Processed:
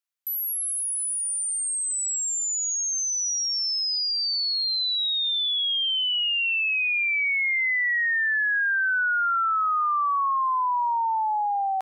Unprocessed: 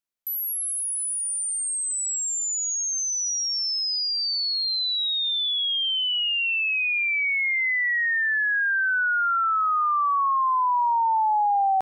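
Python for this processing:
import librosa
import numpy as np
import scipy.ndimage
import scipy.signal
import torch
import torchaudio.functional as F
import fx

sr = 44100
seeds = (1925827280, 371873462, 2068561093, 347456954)

y = scipy.signal.sosfilt(scipy.signal.butter(2, 890.0, 'highpass', fs=sr, output='sos'), x)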